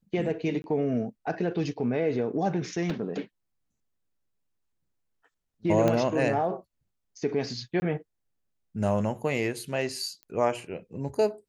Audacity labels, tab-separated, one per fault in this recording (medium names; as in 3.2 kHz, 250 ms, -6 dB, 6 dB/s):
0.620000	0.640000	dropout 21 ms
2.900000	2.900000	dropout 2.5 ms
5.880000	5.880000	pop -12 dBFS
7.800000	7.820000	dropout 20 ms
10.230000	10.230000	pop -30 dBFS